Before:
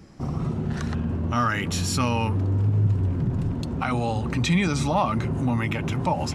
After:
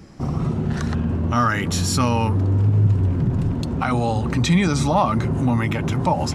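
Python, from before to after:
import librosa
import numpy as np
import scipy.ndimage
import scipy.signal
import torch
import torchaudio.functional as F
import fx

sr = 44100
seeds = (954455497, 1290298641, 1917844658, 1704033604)

y = fx.dynamic_eq(x, sr, hz=2600.0, q=2.3, threshold_db=-46.0, ratio=4.0, max_db=-5)
y = y * 10.0 ** (4.5 / 20.0)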